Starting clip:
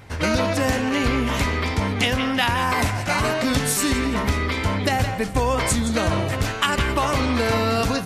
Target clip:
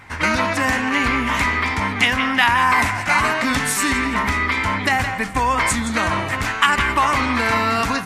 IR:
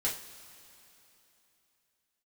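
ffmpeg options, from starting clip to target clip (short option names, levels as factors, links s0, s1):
-af "equalizer=f=125:t=o:w=1:g=-3,equalizer=f=250:t=o:w=1:g=4,equalizer=f=500:t=o:w=1:g=-5,equalizer=f=1000:t=o:w=1:g=9,equalizer=f=2000:t=o:w=1:g=10,equalizer=f=8000:t=o:w=1:g=4,volume=0.708"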